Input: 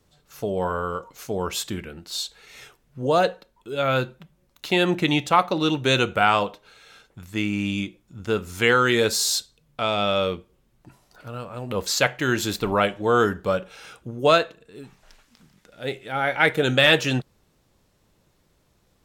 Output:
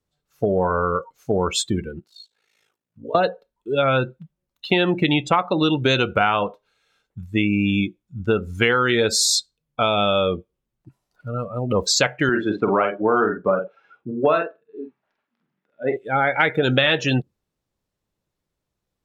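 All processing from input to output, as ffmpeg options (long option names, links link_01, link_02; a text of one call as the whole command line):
ffmpeg -i in.wav -filter_complex "[0:a]asettb=1/sr,asplit=3[link_01][link_02][link_03];[link_01]atrim=end=1.994[link_04];[link_02]atrim=start=1.99:end=3.15,asetpts=PTS-STARTPTS,afade=type=in:duration=0.004:curve=qsin,afade=type=out:start_time=1.156:duration=0.004:curve=qsin,highpass=140,aeval=exprs='val(0)*sin(2*PI*27*n/s)':channel_layout=same,acompressor=threshold=-46dB:ratio=2:attack=3.2:release=140:knee=1:detection=peak[link_05];[link_03]atrim=start=3.146[link_06];[link_04][link_05]acrossfade=duration=0.004:curve1=hsin:curve2=qsin[link_07];[link_07][link_06]acrossfade=duration=0.004:curve1=qsin:curve2=hsin,asettb=1/sr,asplit=3[link_08][link_09][link_10];[link_08]atrim=end=12.294[link_11];[link_09]atrim=start=12.29:end=15.97,asetpts=PTS-STARTPTS,afade=type=in:duration=0.004:curve=qsin,afade=type=out:start_time=3.676:duration=0.004:curve=qsin,highpass=200,lowpass=2100,bandreject=frequency=490:width=16,asplit=2[link_12][link_13];[link_13]adelay=47,volume=-5.5dB[link_14];[link_12][link_14]amix=inputs=2:normalize=0,atrim=end_sample=162288[link_15];[link_10]atrim=start=15.966[link_16];[link_11][link_15]acrossfade=duration=0.004:curve1=hsin:curve2=qsin[link_17];[link_17][link_16]acrossfade=duration=0.004:curve1=qsin:curve2=hsin,afftdn=noise_reduction=25:noise_floor=-31,acompressor=threshold=-24dB:ratio=5,volume=8.5dB" out.wav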